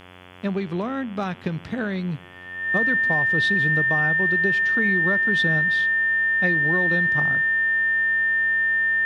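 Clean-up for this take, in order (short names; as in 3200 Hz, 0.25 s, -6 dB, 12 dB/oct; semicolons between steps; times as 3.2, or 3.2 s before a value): de-hum 90.4 Hz, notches 38; notch 1800 Hz, Q 30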